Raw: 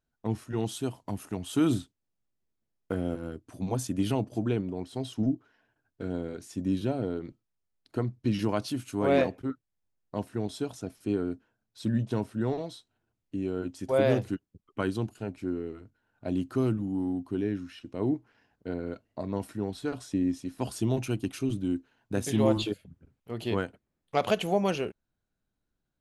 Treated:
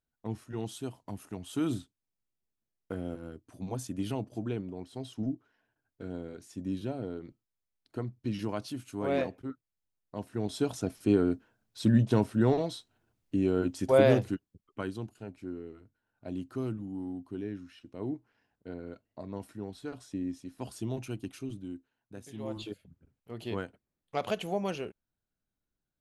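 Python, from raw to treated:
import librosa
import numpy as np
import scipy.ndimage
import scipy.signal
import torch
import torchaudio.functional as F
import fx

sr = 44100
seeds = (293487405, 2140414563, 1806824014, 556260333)

y = fx.gain(x, sr, db=fx.line((10.16, -6.0), (10.7, 4.5), (13.83, 4.5), (14.96, -7.5), (21.3, -7.5), (22.33, -18.0), (22.81, -6.0)))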